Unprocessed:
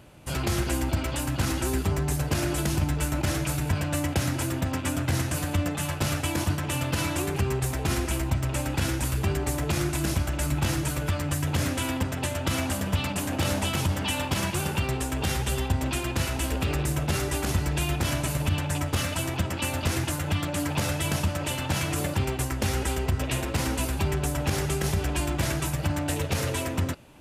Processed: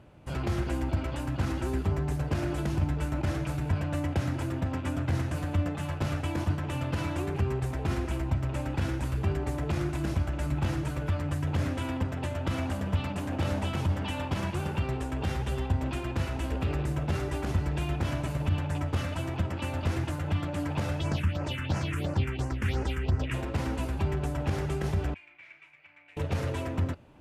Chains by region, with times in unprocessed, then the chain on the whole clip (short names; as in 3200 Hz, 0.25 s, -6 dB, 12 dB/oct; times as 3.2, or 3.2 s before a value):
21–23.34 bell 2800 Hz +9 dB 2 oct + phaser stages 4, 2.9 Hz, lowest notch 650–3500 Hz
25.14–26.17 band-pass 2300 Hz, Q 9.8 + doubler 34 ms -12 dB
whole clip: LPF 1600 Hz 6 dB/oct; bell 86 Hz +3 dB 0.35 oct; gain -3 dB